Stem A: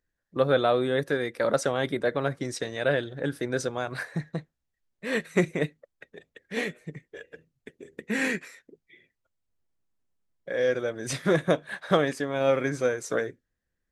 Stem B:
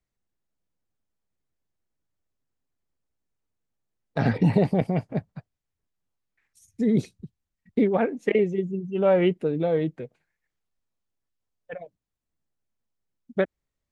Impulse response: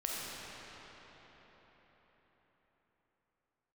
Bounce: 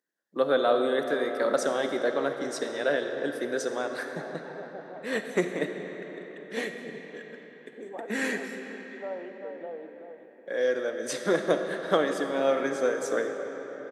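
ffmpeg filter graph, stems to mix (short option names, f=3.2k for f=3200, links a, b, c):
-filter_complex "[0:a]volume=-4.5dB,asplit=2[a][b];[b]volume=-5.5dB[c];[1:a]alimiter=limit=-15dB:level=0:latency=1,bandpass=f=810:t=q:w=1.4:csg=0,volume=-12.5dB,asplit=3[d][e][f];[e]volume=-9.5dB[g];[f]volume=-4.5dB[h];[2:a]atrim=start_sample=2205[i];[c][g]amix=inputs=2:normalize=0[j];[j][i]afir=irnorm=-1:irlink=0[k];[h]aecho=0:1:387:1[l];[a][d][k][l]amix=inputs=4:normalize=0,highpass=f=220:w=0.5412,highpass=f=220:w=1.3066,equalizer=f=2.4k:w=4:g=-5.5"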